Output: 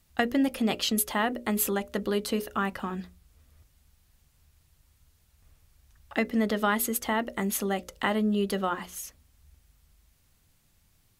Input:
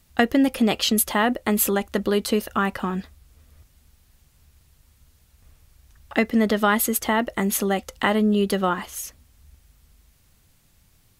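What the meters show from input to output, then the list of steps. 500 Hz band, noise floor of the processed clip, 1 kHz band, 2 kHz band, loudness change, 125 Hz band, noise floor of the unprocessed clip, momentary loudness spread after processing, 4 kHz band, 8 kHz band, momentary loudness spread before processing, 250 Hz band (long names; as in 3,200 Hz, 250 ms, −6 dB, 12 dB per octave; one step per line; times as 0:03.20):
−6.5 dB, −66 dBFS, −6.0 dB, −6.0 dB, −6.5 dB, −6.5 dB, −60 dBFS, 9 LU, −6.0 dB, −6.0 dB, 9 LU, −6.5 dB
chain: mains-hum notches 60/120/180/240/300/360/420/480/540/600 Hz
level −6 dB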